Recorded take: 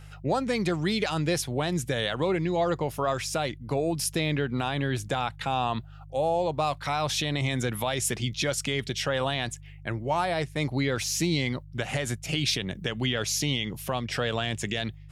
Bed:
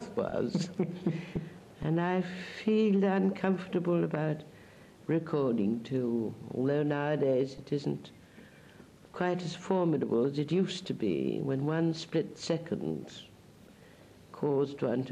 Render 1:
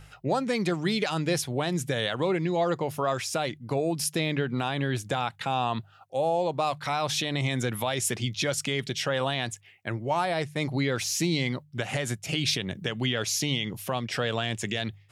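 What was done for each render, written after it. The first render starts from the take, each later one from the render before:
hum removal 50 Hz, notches 3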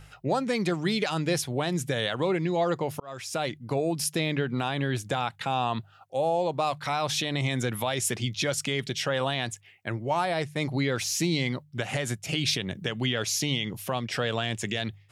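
0:03.00–0:03.44: fade in linear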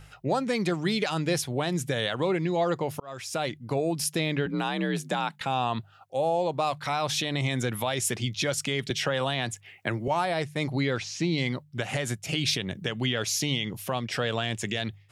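0:04.46–0:05.41: frequency shifter +47 Hz
0:08.90–0:10.08: multiband upward and downward compressor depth 70%
0:10.98–0:11.38: high-frequency loss of the air 130 metres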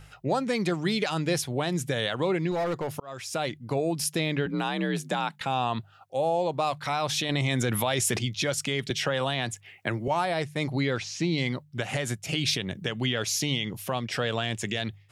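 0:02.51–0:02.94: hard clipping −24.5 dBFS
0:07.29–0:08.19: envelope flattener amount 70%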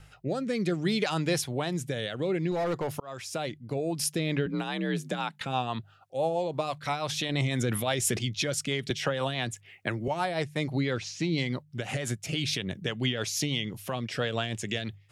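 rotating-speaker cabinet horn 0.6 Hz, later 6 Hz, at 0:03.70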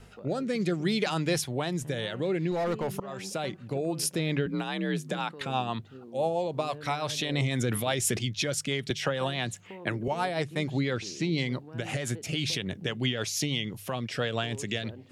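mix in bed −16 dB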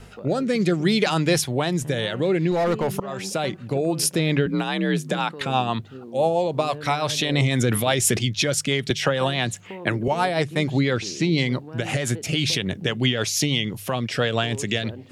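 level +7.5 dB

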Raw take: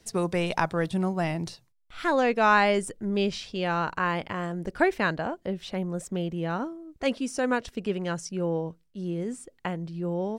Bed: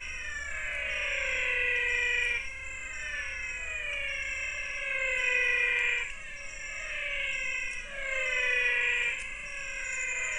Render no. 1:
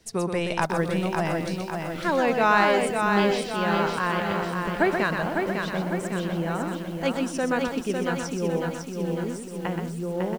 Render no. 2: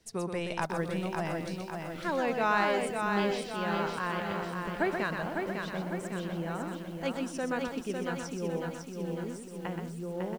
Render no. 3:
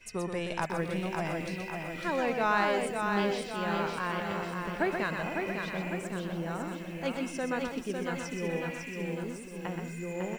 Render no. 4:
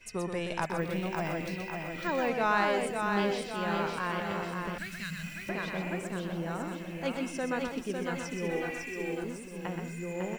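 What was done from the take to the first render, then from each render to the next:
on a send: single-tap delay 125 ms −6 dB; on the sum: feedback echo at a low word length 552 ms, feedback 55%, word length 8 bits, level −4.5 dB
level −7.5 dB
mix in bed −16 dB
0:00.78–0:02.28: bad sample-rate conversion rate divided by 2×, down filtered, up hold; 0:04.78–0:05.49: drawn EQ curve 180 Hz 0 dB, 320 Hz −23 dB, 890 Hz −25 dB, 1,500 Hz −7 dB, 6,200 Hz +7 dB; 0:08.51–0:09.24: comb filter 2.6 ms

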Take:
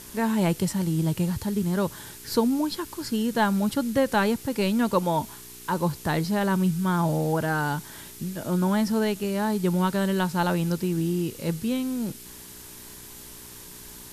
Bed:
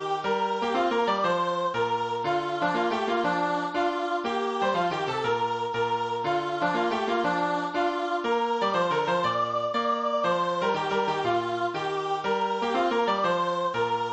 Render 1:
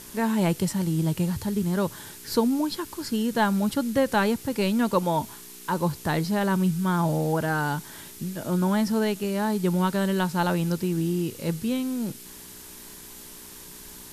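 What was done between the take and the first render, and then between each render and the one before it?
hum removal 60 Hz, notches 2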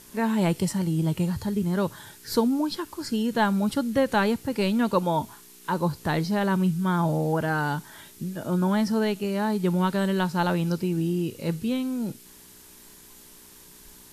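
noise reduction from a noise print 6 dB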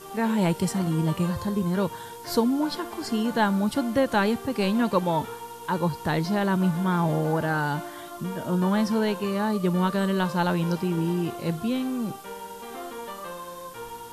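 mix in bed −12.5 dB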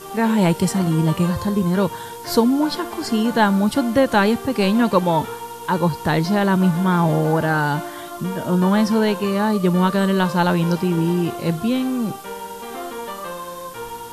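level +6.5 dB

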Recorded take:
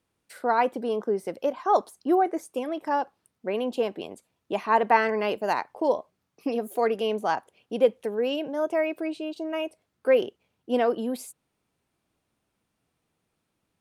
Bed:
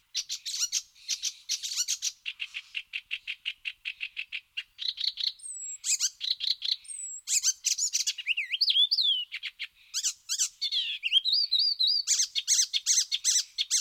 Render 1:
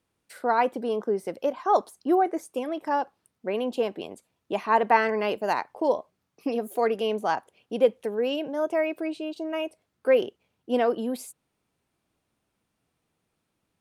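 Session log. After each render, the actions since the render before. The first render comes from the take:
no processing that can be heard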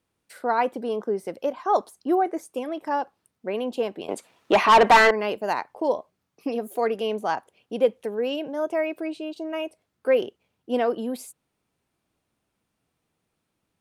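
0:04.08–0:05.11: mid-hump overdrive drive 25 dB, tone 3,700 Hz, clips at −6.5 dBFS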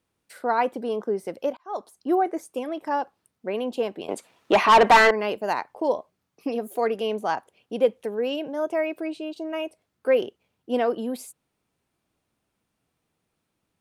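0:01.57–0:02.14: fade in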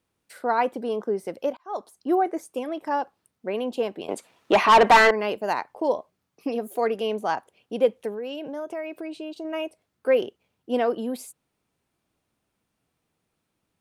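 0:08.11–0:09.45: downward compressor 4 to 1, threshold −30 dBFS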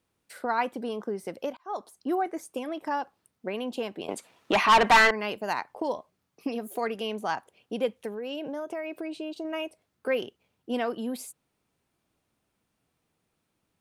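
dynamic equaliser 490 Hz, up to −8 dB, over −33 dBFS, Q 0.75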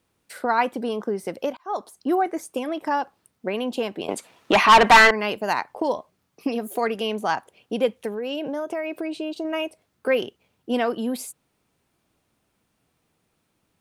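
level +6 dB

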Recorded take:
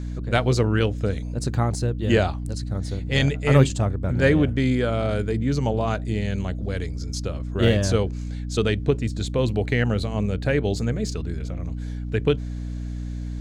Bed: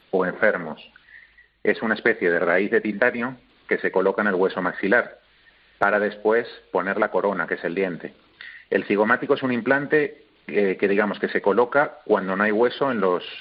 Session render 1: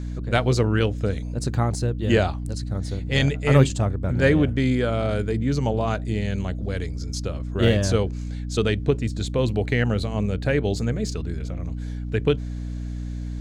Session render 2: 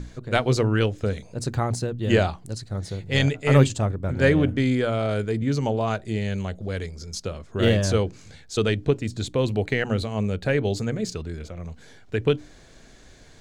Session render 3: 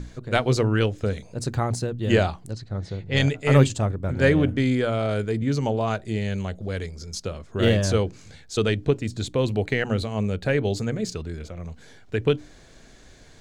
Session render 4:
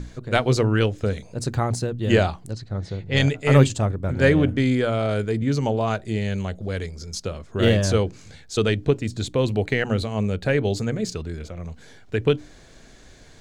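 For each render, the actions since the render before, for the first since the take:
no processing that can be heard
mains-hum notches 60/120/180/240/300 Hz
0:02.51–0:03.17: high-frequency loss of the air 120 metres
level +1.5 dB

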